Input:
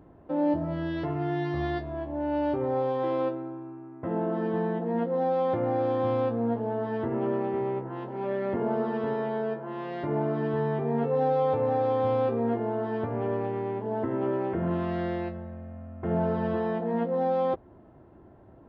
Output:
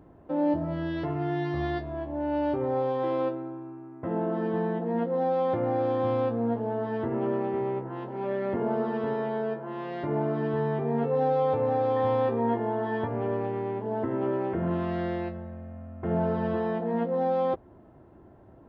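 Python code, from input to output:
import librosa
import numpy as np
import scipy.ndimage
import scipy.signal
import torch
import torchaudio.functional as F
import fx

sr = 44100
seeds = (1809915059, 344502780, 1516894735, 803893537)

y = fx.small_body(x, sr, hz=(950.0, 1800.0, 3300.0), ring_ms=45, db=12, at=(11.96, 13.08))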